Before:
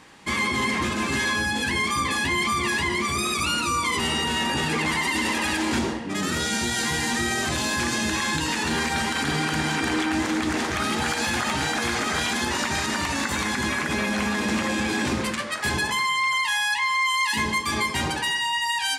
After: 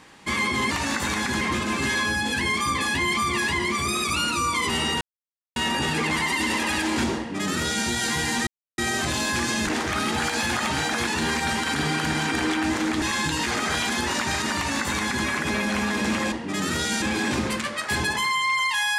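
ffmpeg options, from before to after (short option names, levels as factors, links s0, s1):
-filter_complex "[0:a]asplit=11[s0][s1][s2][s3][s4][s5][s6][s7][s8][s9][s10];[s0]atrim=end=0.712[s11];[s1]atrim=start=12.998:end=13.702[s12];[s2]atrim=start=0.708:end=4.31,asetpts=PTS-STARTPTS,afade=t=out:st=3.598:d=0.004:c=hsin,apad=pad_dur=0.55[s13];[s3]atrim=start=4.31:end=7.22,asetpts=PTS-STARTPTS,afade=t=in:d=0.004:c=hsin,afade=t=out:st=2.906:d=0.004:c=hsin,apad=pad_dur=0.31[s14];[s4]atrim=start=7.22:end=8.112,asetpts=PTS-STARTPTS,afade=t=in:d=0.004:c=hsin[s15];[s5]atrim=start=10.508:end=11.912[s16];[s6]atrim=start=8.558:end=10.512[s17];[s7]atrim=start=8.108:end=8.562[s18];[s8]atrim=start=11.908:end=14.762[s19];[s9]atrim=start=5.928:end=6.632[s20];[s10]atrim=start=14.758[s21];[s11][s12]acrossfade=d=0.004:c1=hsin:c2=hsin[s22];[s13][s14][s15]concat=n=3:v=0:a=1[s23];[s22][s23]acrossfade=d=0.004:c1=hsin:c2=hsin[s24];[s24][s16]acrossfade=d=0.004:c1=hsin:c2=hsin[s25];[s25][s17]acrossfade=d=0.004:c1=hsin:c2=hsin[s26];[s26][s18]acrossfade=d=0.004:c1=hsin:c2=hsin[s27];[s27][s19]acrossfade=d=0.004:c1=hsin:c2=hsin[s28];[s28][s20]acrossfade=d=0.004:c1=hsin:c2=hsin[s29];[s29][s21]acrossfade=d=0.004:c1=hsin:c2=hsin"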